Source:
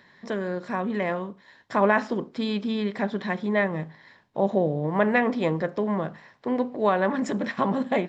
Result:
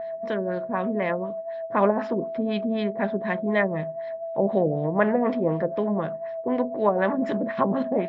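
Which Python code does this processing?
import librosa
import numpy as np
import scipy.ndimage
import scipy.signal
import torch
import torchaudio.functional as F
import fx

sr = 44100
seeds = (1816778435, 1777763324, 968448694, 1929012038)

y = x + 10.0 ** (-30.0 / 20.0) * np.sin(2.0 * np.pi * 660.0 * np.arange(len(x)) / sr)
y = fx.filter_lfo_lowpass(y, sr, shape='sine', hz=4.0, low_hz=420.0, high_hz=3900.0, q=1.2)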